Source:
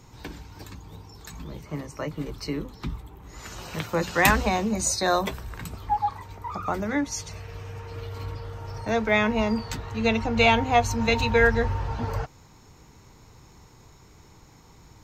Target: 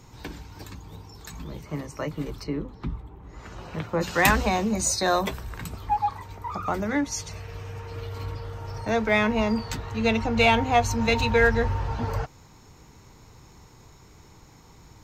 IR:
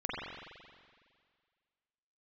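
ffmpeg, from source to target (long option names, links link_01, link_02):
-filter_complex "[0:a]asplit=2[link_01][link_02];[link_02]volume=22dB,asoftclip=hard,volume=-22dB,volume=-10dB[link_03];[link_01][link_03]amix=inputs=2:normalize=0,asplit=3[link_04][link_05][link_06];[link_04]afade=type=out:start_time=2.42:duration=0.02[link_07];[link_05]lowpass=frequency=1300:poles=1,afade=type=in:start_time=2.42:duration=0.02,afade=type=out:start_time=4:duration=0.02[link_08];[link_06]afade=type=in:start_time=4:duration=0.02[link_09];[link_07][link_08][link_09]amix=inputs=3:normalize=0,volume=-1.5dB"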